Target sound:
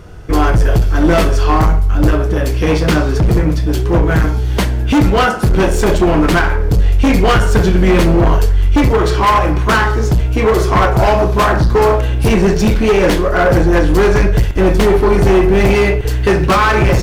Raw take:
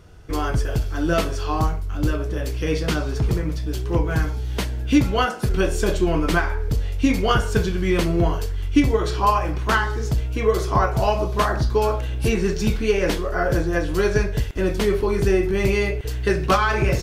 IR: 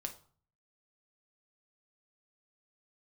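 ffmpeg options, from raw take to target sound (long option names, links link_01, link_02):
-filter_complex "[0:a]asoftclip=type=hard:threshold=-20dB,asplit=2[link_01][link_02];[1:a]atrim=start_sample=2205,asetrate=37044,aresample=44100,lowpass=2800[link_03];[link_02][link_03]afir=irnorm=-1:irlink=0,volume=-4dB[link_04];[link_01][link_04]amix=inputs=2:normalize=0,volume=9dB"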